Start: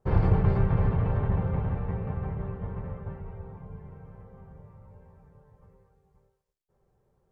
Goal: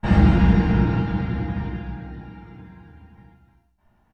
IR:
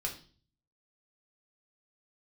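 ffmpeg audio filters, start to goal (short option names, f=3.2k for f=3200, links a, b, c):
-filter_complex "[0:a]aecho=1:1:30|69|119.7|185.6|271.3:0.631|0.398|0.251|0.158|0.1[a];[1:a]atrim=start_sample=2205,asetrate=29106,aresample=44100[b];[a][b]afir=irnorm=-1:irlink=0,asetrate=78057,aresample=44100"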